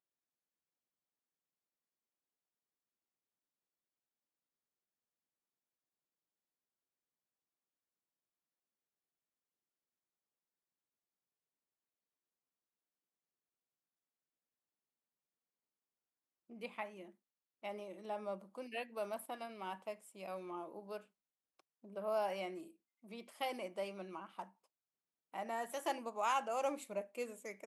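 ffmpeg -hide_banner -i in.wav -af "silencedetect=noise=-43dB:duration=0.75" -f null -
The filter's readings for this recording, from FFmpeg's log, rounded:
silence_start: 0.00
silence_end: 16.62 | silence_duration: 16.62
silence_start: 20.97
silence_end: 21.96 | silence_duration: 0.98
silence_start: 24.43
silence_end: 25.34 | silence_duration: 0.91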